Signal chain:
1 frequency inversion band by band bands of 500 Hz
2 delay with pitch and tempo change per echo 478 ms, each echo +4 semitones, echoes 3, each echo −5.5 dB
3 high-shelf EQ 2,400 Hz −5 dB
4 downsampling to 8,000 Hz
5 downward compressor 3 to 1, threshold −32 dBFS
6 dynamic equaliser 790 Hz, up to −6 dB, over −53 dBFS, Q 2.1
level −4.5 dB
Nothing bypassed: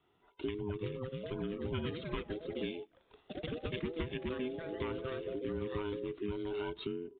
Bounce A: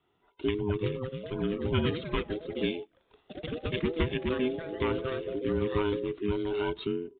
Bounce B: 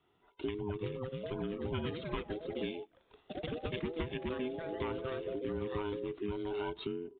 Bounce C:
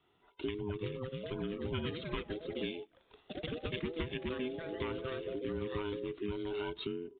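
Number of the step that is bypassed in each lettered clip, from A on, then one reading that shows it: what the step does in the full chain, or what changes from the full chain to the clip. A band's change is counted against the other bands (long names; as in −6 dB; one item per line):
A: 5, average gain reduction 6.5 dB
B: 6, 1 kHz band +3.0 dB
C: 3, 4 kHz band +3.0 dB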